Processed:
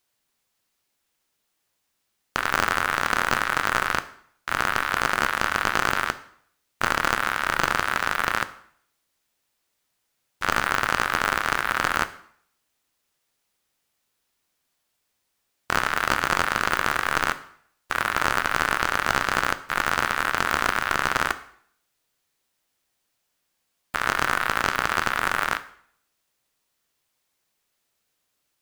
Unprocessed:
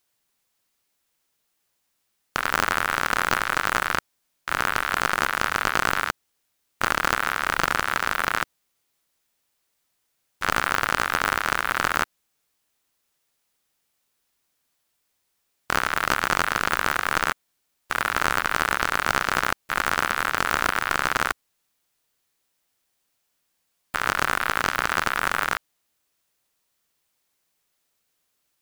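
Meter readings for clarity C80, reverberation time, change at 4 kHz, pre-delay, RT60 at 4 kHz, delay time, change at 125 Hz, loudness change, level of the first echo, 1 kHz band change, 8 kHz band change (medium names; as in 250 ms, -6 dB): 18.5 dB, 0.60 s, 0.0 dB, 5 ms, 0.55 s, no echo, +0.5 dB, 0.0 dB, no echo, 0.0 dB, -1.0 dB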